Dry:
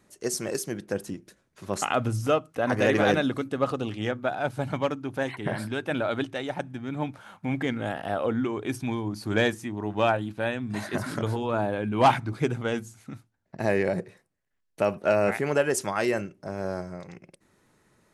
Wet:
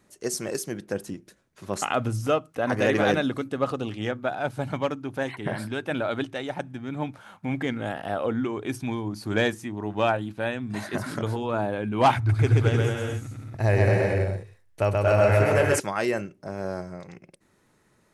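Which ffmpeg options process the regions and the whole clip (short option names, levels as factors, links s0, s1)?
-filter_complex "[0:a]asettb=1/sr,asplit=3[s0][s1][s2];[s0]atrim=end=12.164[s3];[s1]atrim=start=12.16:end=15.8,asetpts=PTS-STARTPTS,afade=t=in:d=0.004:c=qsin,afade=t=out:st=3.636:d=0.004:c=qsin,lowshelf=f=130:t=q:w=3:g=9,aecho=1:1:130|227.5|300.6|355.5|396.6|427.5:0.794|0.631|0.501|0.398|0.316|0.251,atrim=end_sample=160524[s4];[s2]atrim=start=15.796[s5];[s3][s4]acrossfade=d=0.004:c1=hsin:c2=qsin[s6];[s6][s5]acrossfade=d=0.004:c1=qsin:c2=hsin"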